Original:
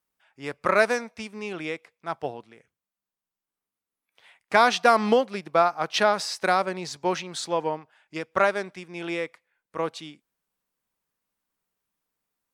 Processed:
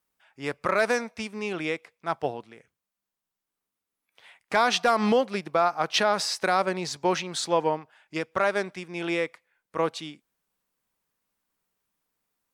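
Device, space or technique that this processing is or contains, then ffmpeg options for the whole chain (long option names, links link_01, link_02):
clipper into limiter: -af "asoftclip=type=hard:threshold=-8dB,alimiter=limit=-14.5dB:level=0:latency=1:release=77,volume=2.5dB"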